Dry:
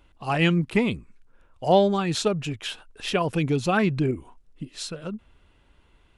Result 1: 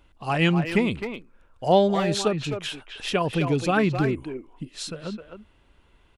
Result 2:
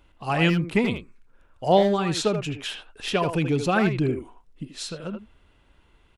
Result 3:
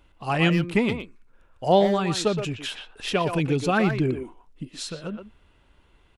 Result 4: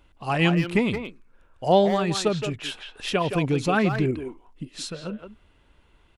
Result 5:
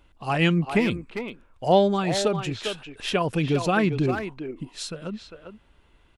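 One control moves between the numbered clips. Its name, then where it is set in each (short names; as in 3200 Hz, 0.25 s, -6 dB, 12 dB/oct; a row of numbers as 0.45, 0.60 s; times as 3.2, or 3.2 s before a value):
speakerphone echo, time: 260, 80, 120, 170, 400 ms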